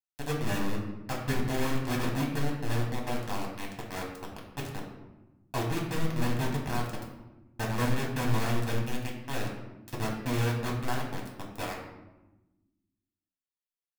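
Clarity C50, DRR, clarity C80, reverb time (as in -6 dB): 4.5 dB, -2.5 dB, 7.0 dB, 1.1 s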